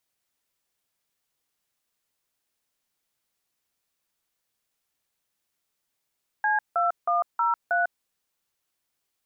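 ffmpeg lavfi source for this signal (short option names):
-f lavfi -i "aevalsrc='0.0708*clip(min(mod(t,0.317),0.149-mod(t,0.317))/0.002,0,1)*(eq(floor(t/0.317),0)*(sin(2*PI*852*mod(t,0.317))+sin(2*PI*1633*mod(t,0.317)))+eq(floor(t/0.317),1)*(sin(2*PI*697*mod(t,0.317))+sin(2*PI*1336*mod(t,0.317)))+eq(floor(t/0.317),2)*(sin(2*PI*697*mod(t,0.317))+sin(2*PI*1209*mod(t,0.317)))+eq(floor(t/0.317),3)*(sin(2*PI*941*mod(t,0.317))+sin(2*PI*1336*mod(t,0.317)))+eq(floor(t/0.317),4)*(sin(2*PI*697*mod(t,0.317))+sin(2*PI*1477*mod(t,0.317))))':d=1.585:s=44100"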